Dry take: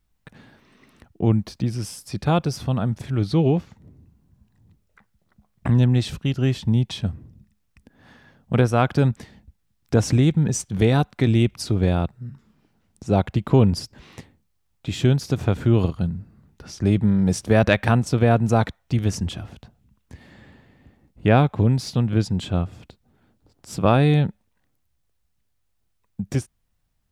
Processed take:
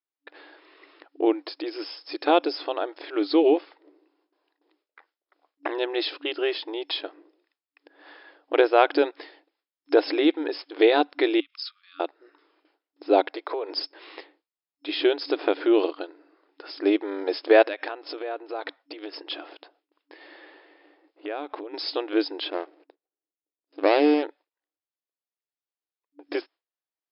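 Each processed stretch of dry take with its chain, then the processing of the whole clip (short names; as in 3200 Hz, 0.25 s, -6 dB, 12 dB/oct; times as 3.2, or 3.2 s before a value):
11.4–12 EQ curve 460 Hz 0 dB, 1800 Hz -9 dB, 5500 Hz +1 dB + compressor 16:1, threshold -29 dBFS + brick-wall FIR high-pass 1100 Hz
13.3–13.71 steep high-pass 390 Hz + bell 2900 Hz -14 dB 0.26 oct + compressor 12:1, threshold -29 dBFS
17.65–21.74 compressor 16:1, threshold -27 dBFS + hard clip -22.5 dBFS
22.5–24.23 median filter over 41 samples + three-band expander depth 40%
whole clip: gate with hold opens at -50 dBFS; FFT band-pass 290–5300 Hz; dynamic EQ 1200 Hz, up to -5 dB, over -40 dBFS, Q 2.9; gain +4 dB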